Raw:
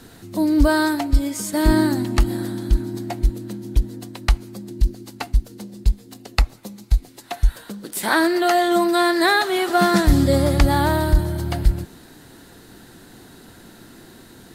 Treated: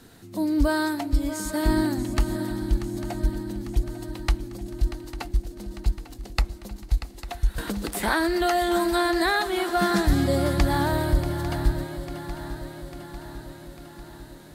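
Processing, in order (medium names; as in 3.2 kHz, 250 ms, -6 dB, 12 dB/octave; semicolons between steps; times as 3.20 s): shuffle delay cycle 848 ms, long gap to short 3:1, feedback 58%, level -12.5 dB; 7.58–9.36 s: three bands compressed up and down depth 70%; trim -6 dB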